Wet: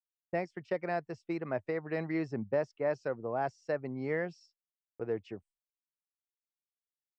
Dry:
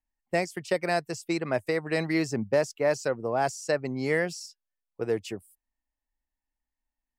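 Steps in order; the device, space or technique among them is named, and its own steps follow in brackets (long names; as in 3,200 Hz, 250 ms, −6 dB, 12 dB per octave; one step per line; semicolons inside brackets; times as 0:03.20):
Butterworth low-pass 9,100 Hz
dynamic equaliser 5,400 Hz, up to +7 dB, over −57 dBFS, Q 6.7
hearing-loss simulation (low-pass filter 1,900 Hz 12 dB per octave; downward expander −50 dBFS)
level −6.5 dB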